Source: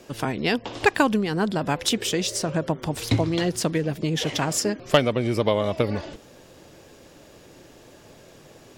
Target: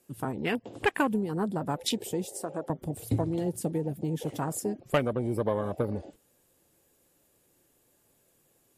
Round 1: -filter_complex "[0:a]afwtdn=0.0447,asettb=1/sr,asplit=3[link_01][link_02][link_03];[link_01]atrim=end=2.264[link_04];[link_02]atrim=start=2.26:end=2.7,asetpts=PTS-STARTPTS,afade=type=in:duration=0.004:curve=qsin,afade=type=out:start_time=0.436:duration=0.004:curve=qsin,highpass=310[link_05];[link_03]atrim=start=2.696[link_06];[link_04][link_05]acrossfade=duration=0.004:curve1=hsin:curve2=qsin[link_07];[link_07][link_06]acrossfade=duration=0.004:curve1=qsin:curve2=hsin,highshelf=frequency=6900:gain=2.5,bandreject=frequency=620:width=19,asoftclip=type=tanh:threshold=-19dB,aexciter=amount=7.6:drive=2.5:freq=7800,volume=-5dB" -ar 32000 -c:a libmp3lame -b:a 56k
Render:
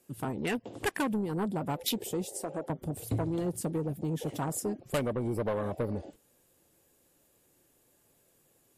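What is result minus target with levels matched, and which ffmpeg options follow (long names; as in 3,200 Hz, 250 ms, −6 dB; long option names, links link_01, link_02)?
soft clipping: distortion +14 dB
-filter_complex "[0:a]afwtdn=0.0447,asettb=1/sr,asplit=3[link_01][link_02][link_03];[link_01]atrim=end=2.264[link_04];[link_02]atrim=start=2.26:end=2.7,asetpts=PTS-STARTPTS,afade=type=in:duration=0.004:curve=qsin,afade=type=out:start_time=0.436:duration=0.004:curve=qsin,highpass=310[link_05];[link_03]atrim=start=2.696[link_06];[link_04][link_05]acrossfade=duration=0.004:curve1=hsin:curve2=qsin[link_07];[link_07][link_06]acrossfade=duration=0.004:curve1=qsin:curve2=hsin,highshelf=frequency=6900:gain=2.5,bandreject=frequency=620:width=19,asoftclip=type=tanh:threshold=-7dB,aexciter=amount=7.6:drive=2.5:freq=7800,volume=-5dB" -ar 32000 -c:a libmp3lame -b:a 56k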